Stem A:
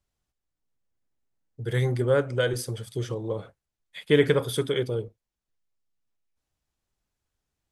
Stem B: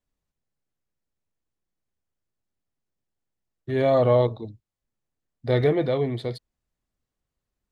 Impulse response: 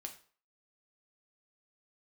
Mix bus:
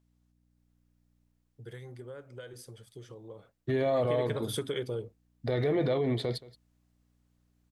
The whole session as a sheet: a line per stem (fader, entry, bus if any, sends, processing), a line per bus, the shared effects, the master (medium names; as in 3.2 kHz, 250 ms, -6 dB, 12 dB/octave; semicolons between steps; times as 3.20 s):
1.23 s -2.5 dB -> 1.76 s -14 dB -> 3.93 s -14 dB -> 4.33 s -2.5 dB, 0.00 s, no send, no echo send, compression 12:1, threshold -26 dBFS, peak gain reduction 12.5 dB; hum 60 Hz, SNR 29 dB
-4.0 dB, 0.00 s, no send, echo send -20 dB, level rider gain up to 8 dB; peak limiter -16 dBFS, peak gain reduction 13.5 dB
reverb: none
echo: delay 175 ms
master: bass shelf 93 Hz -6.5 dB